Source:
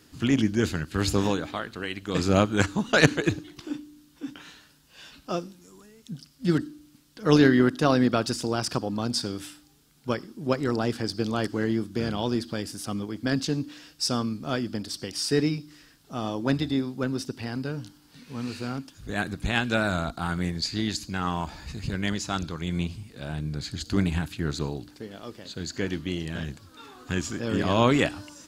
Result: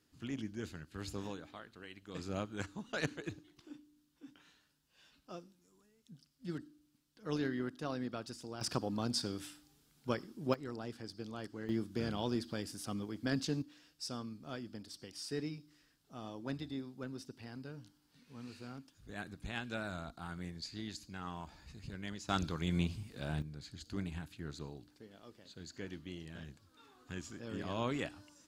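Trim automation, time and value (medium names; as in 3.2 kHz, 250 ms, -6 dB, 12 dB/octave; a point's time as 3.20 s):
-18.5 dB
from 8.61 s -8 dB
from 10.54 s -17.5 dB
from 11.69 s -9 dB
from 13.62 s -16 dB
from 22.29 s -5 dB
from 23.42 s -16 dB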